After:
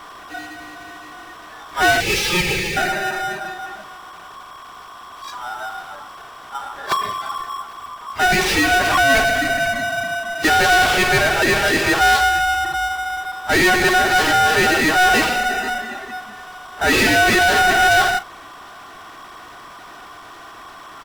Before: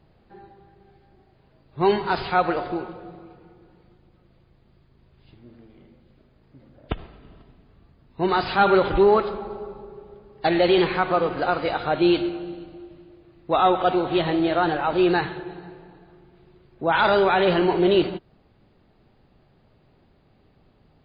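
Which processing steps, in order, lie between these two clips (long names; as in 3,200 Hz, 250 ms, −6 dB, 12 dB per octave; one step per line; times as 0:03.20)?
one-sided soft clipper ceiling −21.5 dBFS
0:02.00–0:02.77: high-pass filter 1,200 Hz 24 dB per octave
0:08.27–0:09.10: downward compressor, threshold −21 dBFS, peak gain reduction 6.5 dB
comb filter 2.6 ms, depth 93%
ring modulation 1,100 Hz
power curve on the samples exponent 0.35
noise reduction from a noise print of the clip's start 11 dB
level −2.5 dB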